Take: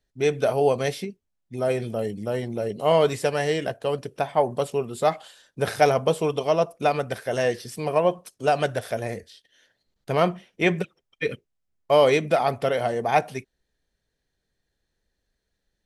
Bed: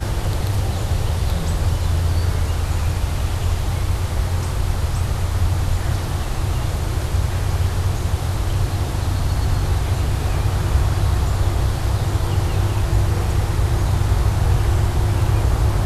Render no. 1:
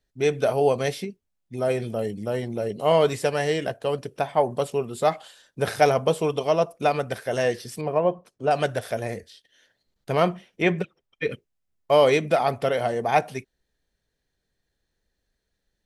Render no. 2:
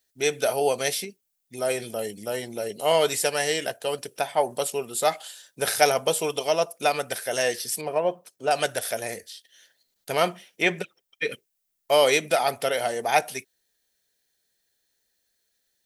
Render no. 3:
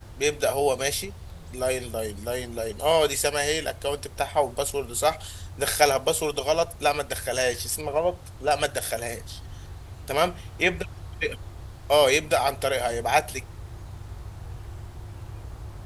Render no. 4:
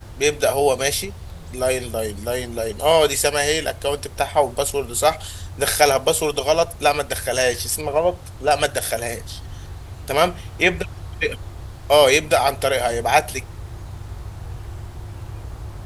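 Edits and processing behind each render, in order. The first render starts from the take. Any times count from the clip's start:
7.81–8.51 s: low-pass 1.1 kHz 6 dB/octave; 10.62–11.32 s: low-pass 3.7 kHz 6 dB/octave
RIAA curve recording; band-stop 1.1 kHz, Q 10
add bed -21.5 dB
trim +5.5 dB; peak limiter -1 dBFS, peak gain reduction 2 dB

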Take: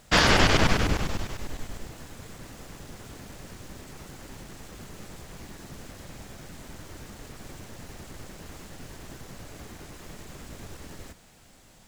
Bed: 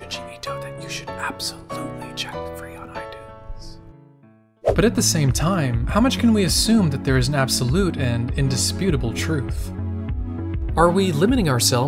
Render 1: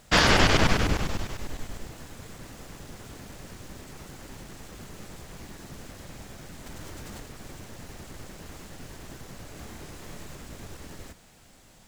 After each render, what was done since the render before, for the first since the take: 6.66–7.23 s: level flattener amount 100%; 9.54–10.35 s: doubling 28 ms -5 dB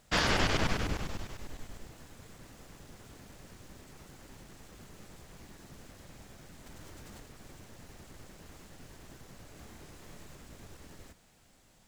trim -8.5 dB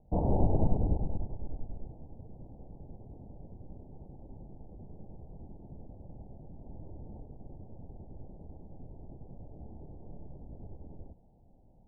steep low-pass 870 Hz 72 dB/octave; bass shelf 190 Hz +7.5 dB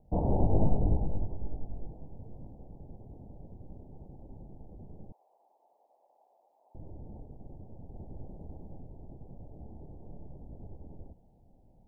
0.49–2.51 s: doubling 20 ms -3 dB; 5.12–6.75 s: high-pass 740 Hz 24 dB/octave; 7.94–8.80 s: gain +3 dB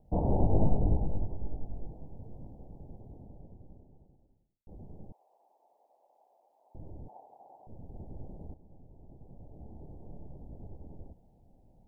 2.83–4.67 s: studio fade out; 7.08–7.67 s: resonant high-pass 790 Hz, resonance Q 3.9; 8.54–9.88 s: fade in, from -13 dB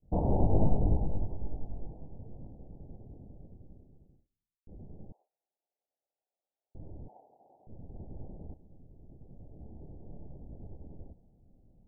gate with hold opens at -54 dBFS; level-controlled noise filter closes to 410 Hz, open at -25 dBFS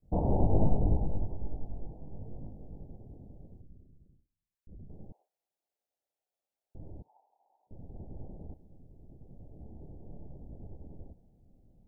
2.05–2.84 s: doubling 20 ms -3.5 dB; 3.61–4.90 s: resonances exaggerated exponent 1.5; 7.02–7.71 s: band-pass filter 960 Hz, Q 6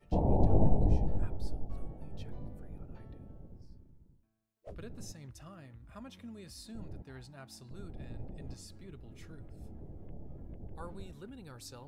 add bed -31 dB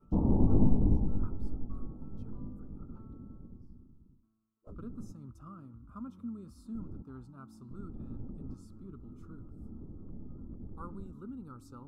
FFT filter 150 Hz 0 dB, 240 Hz +8 dB, 690 Hz -12 dB, 1.3 kHz +8 dB, 1.8 kHz -28 dB, 2.6 kHz -20 dB, 4.2 kHz -19 dB, 7.7 kHz -13 dB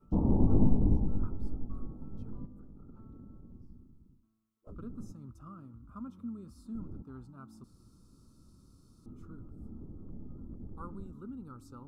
2.45–3.54 s: compression 10:1, threshold -45 dBFS; 7.64–9.06 s: room tone

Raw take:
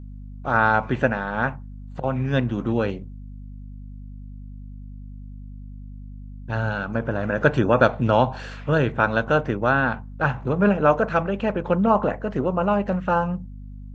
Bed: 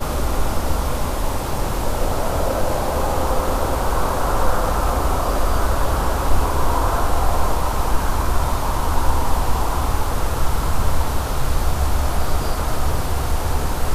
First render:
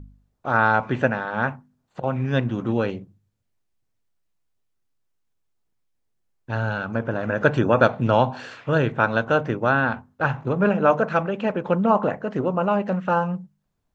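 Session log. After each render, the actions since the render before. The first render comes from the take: de-hum 50 Hz, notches 5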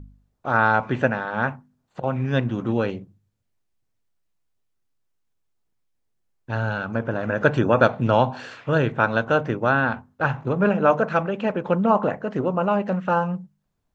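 no audible change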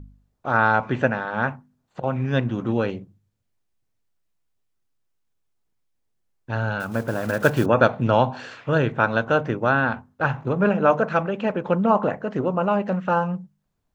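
6.80–7.66 s: block-companded coder 5-bit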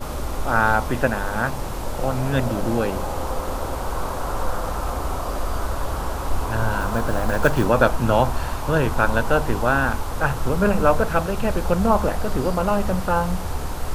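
add bed -6.5 dB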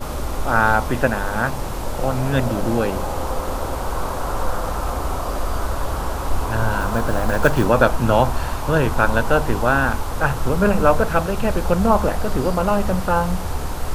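trim +2 dB; peak limiter -1 dBFS, peak gain reduction 1 dB

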